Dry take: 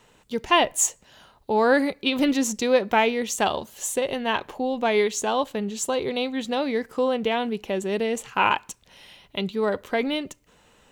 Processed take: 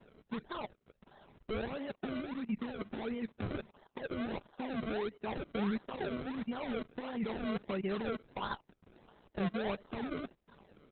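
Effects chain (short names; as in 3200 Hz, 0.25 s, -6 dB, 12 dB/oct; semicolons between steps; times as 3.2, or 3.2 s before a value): compressor 5:1, threshold -31 dBFS, peak gain reduction 15.5 dB; LPF 2000 Hz 24 dB/oct, from 5.43 s 3900 Hz; level quantiser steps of 20 dB; dynamic EQ 160 Hz, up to +6 dB, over -57 dBFS, Q 1.5; comb 5 ms, depth 55%; decimation with a swept rate 34×, swing 100% 1.5 Hz; gain +1.5 dB; Opus 8 kbps 48000 Hz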